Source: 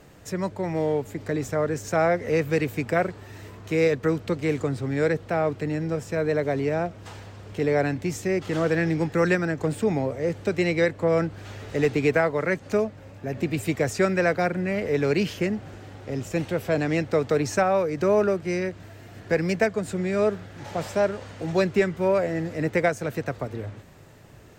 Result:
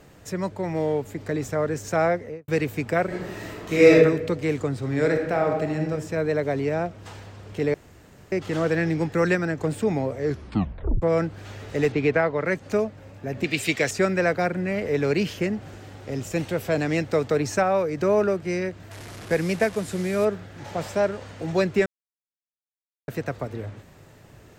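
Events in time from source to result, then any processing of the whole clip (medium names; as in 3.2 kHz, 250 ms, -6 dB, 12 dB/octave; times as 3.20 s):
2.05–2.48 s: studio fade out
3.06–3.96 s: reverb throw, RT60 0.85 s, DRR -7.5 dB
4.78–5.85 s: reverb throw, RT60 1.1 s, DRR 3 dB
7.74–8.32 s: room tone
10.18 s: tape stop 0.84 s
11.92–12.46 s: low-pass 4.3 kHz
13.44–13.91 s: frequency weighting D
15.61–17.28 s: treble shelf 4.1 kHz +4.5 dB
18.91–20.25 s: one-bit delta coder 64 kbps, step -33.5 dBFS
21.86–23.08 s: mute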